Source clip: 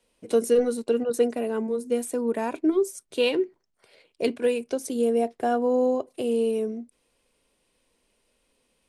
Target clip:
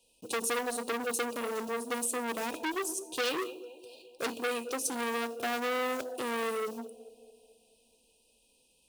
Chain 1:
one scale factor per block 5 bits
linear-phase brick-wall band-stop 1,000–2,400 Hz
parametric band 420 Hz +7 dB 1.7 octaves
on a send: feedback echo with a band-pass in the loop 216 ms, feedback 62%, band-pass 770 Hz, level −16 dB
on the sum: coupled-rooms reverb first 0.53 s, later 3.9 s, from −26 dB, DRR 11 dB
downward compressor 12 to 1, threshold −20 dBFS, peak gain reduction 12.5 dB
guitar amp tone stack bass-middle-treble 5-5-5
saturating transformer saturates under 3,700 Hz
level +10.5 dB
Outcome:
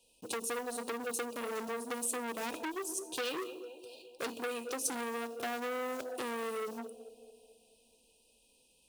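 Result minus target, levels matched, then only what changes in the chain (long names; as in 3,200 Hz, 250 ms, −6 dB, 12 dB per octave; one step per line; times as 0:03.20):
downward compressor: peak gain reduction +7 dB
change: downward compressor 12 to 1, threshold −12.5 dBFS, peak gain reduction 5.5 dB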